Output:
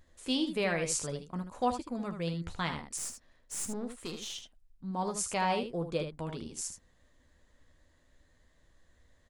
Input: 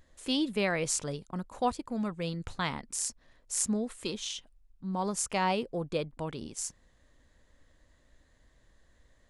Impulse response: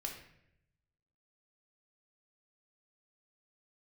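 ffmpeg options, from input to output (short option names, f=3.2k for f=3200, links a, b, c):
-filter_complex "[0:a]asettb=1/sr,asplit=3[a][b][c];[a]atrim=end=2.974[d];[b]atrim=start=2.97:end=4.35,asetpts=PTS-STARTPTS,afade=t=in:d=0.004:c=qsin,afade=t=out:st=1.376:d=0.004:c=qsin,aeval=exprs='(tanh(31.6*val(0)+0.45)-tanh(0.45))/31.6':c=same[e];[c]atrim=start=4.346[f];[d][e]acrossfade=d=0.004:c1=hsin:c2=qsin[g];[g][f]acrossfade=d=0.004:c1=qsin:c2=hsin,aecho=1:1:12|77:0.335|0.398,volume=-2.5dB"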